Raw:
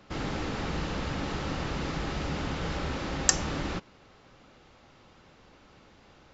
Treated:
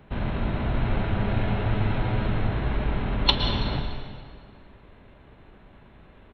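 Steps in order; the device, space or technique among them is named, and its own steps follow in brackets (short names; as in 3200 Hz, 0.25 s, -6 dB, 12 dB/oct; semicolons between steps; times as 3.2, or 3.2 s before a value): 0.83–2.31 comb 7 ms, depth 69%; monster voice (pitch shift -5 st; formant shift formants -5 st; low shelf 110 Hz +7 dB; reverb RT60 2.0 s, pre-delay 0.103 s, DRR 5 dB); gain +2.5 dB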